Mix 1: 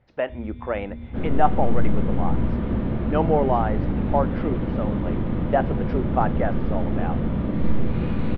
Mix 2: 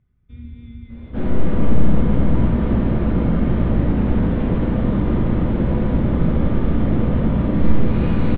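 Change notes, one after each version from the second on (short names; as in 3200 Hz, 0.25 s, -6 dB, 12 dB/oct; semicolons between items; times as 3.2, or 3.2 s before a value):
speech: muted; second sound: send +7.5 dB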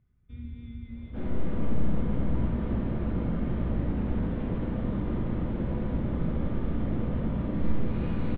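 first sound -4.0 dB; second sound -11.5 dB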